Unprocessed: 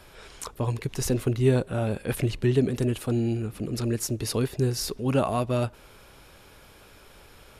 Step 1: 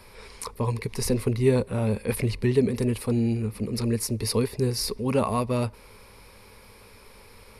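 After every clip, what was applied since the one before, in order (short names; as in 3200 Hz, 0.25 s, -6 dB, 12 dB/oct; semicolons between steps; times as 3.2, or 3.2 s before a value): ripple EQ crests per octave 0.9, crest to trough 9 dB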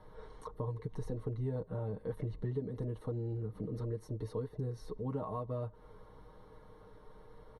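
comb 6.5 ms, depth 77%; compressor 3:1, threshold -32 dBFS, peak gain reduction 13.5 dB; running mean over 18 samples; gain -5 dB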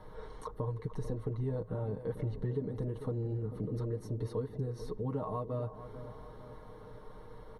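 in parallel at -2 dB: compressor, threshold -45 dBFS, peak gain reduction 13 dB; on the sum: dark delay 0.444 s, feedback 55%, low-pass 1500 Hz, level -12 dB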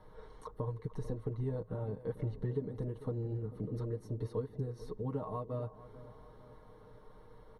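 upward expander 1.5:1, over -43 dBFS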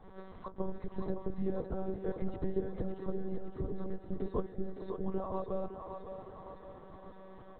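monotone LPC vocoder at 8 kHz 190 Hz; on a send: thinning echo 0.562 s, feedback 60%, high-pass 350 Hz, level -6 dB; on the sum: gain +3 dB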